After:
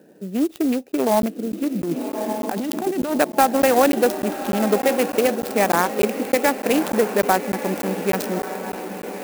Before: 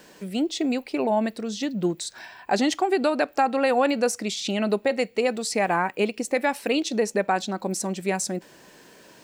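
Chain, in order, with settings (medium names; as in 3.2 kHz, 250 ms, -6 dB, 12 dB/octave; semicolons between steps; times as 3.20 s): local Wiener filter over 41 samples; echo that smears into a reverb 1197 ms, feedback 57%, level -9.5 dB; 1.83–3.18 s: compressor with a negative ratio -28 dBFS, ratio -1; high-pass 180 Hz 12 dB/octave; crackling interface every 0.30 s, samples 512, zero, from 0.92 s; sampling jitter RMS 0.046 ms; trim +6 dB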